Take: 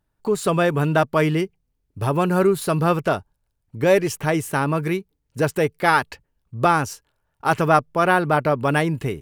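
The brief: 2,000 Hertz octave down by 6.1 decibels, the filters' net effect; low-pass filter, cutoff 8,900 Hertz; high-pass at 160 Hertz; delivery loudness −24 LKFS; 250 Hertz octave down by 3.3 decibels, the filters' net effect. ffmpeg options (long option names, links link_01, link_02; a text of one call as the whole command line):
ffmpeg -i in.wav -af "highpass=160,lowpass=8900,equalizer=frequency=250:width_type=o:gain=-3.5,equalizer=frequency=2000:width_type=o:gain=-9,volume=-1dB" out.wav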